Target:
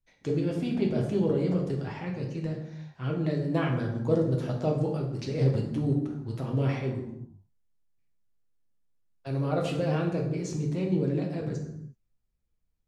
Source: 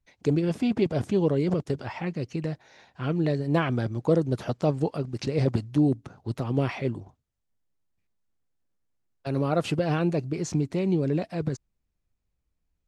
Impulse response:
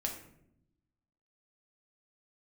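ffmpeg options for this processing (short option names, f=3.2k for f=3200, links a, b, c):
-filter_complex "[1:a]atrim=start_sample=2205,afade=t=out:st=0.33:d=0.01,atrim=end_sample=14994,asetrate=31311,aresample=44100[a];[0:a][a]afir=irnorm=-1:irlink=0,volume=-7.5dB"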